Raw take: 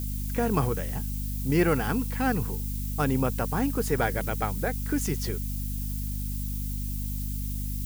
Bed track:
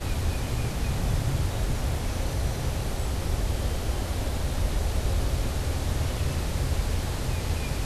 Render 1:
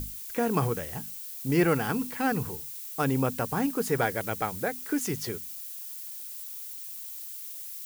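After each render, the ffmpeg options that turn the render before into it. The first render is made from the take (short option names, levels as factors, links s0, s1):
-af "bandreject=f=50:t=h:w=6,bandreject=f=100:t=h:w=6,bandreject=f=150:t=h:w=6,bandreject=f=200:t=h:w=6,bandreject=f=250:t=h:w=6"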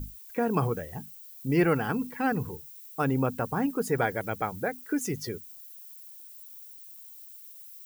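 -af "afftdn=nr=12:nf=-40"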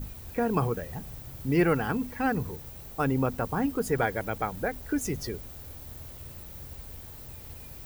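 -filter_complex "[1:a]volume=0.119[s0];[0:a][s0]amix=inputs=2:normalize=0"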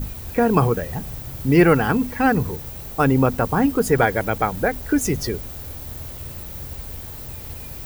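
-af "volume=2.99,alimiter=limit=0.708:level=0:latency=1"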